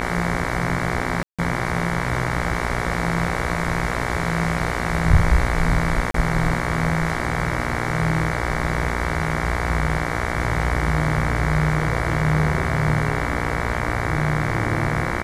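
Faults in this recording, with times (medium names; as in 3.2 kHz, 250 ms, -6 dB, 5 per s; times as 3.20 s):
buzz 60 Hz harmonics 38 -26 dBFS
1.23–1.39 s: dropout 156 ms
6.11–6.14 s: dropout 33 ms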